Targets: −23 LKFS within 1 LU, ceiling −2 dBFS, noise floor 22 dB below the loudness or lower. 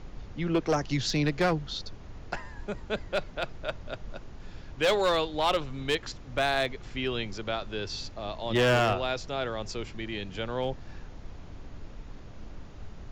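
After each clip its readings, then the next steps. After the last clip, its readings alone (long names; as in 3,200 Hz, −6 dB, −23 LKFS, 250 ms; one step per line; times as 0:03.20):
share of clipped samples 0.7%; peaks flattened at −19.0 dBFS; background noise floor −45 dBFS; target noise floor −52 dBFS; integrated loudness −30.0 LKFS; sample peak −19.0 dBFS; target loudness −23.0 LKFS
→ clipped peaks rebuilt −19 dBFS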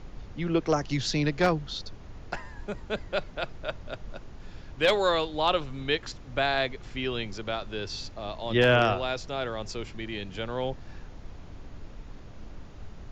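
share of clipped samples 0.0%; background noise floor −45 dBFS; target noise floor −51 dBFS
→ noise reduction from a noise print 6 dB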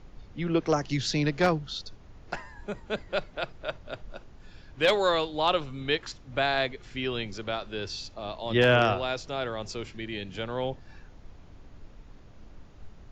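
background noise floor −51 dBFS; integrated loudness −29.0 LKFS; sample peak −10.0 dBFS; target loudness −23.0 LKFS
→ level +6 dB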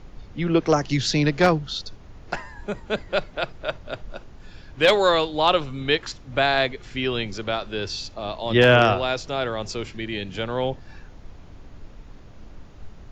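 integrated loudness −23.0 LKFS; sample peak −4.0 dBFS; background noise floor −45 dBFS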